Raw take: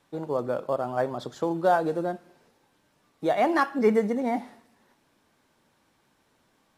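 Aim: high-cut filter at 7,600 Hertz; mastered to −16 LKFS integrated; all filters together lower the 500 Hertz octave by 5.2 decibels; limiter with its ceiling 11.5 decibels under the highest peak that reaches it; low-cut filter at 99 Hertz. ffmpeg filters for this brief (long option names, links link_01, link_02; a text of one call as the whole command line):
ffmpeg -i in.wav -af "highpass=99,lowpass=7600,equalizer=frequency=500:width_type=o:gain=-6.5,volume=18dB,alimiter=limit=-5.5dB:level=0:latency=1" out.wav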